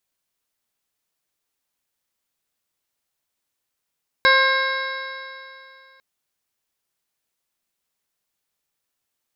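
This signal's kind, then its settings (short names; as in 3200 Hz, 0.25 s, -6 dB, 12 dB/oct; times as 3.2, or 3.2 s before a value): stretched partials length 1.75 s, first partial 529 Hz, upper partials 3/6/1/-19/-18/0.5/-11/-7.5 dB, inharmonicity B 0.0022, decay 2.62 s, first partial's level -20 dB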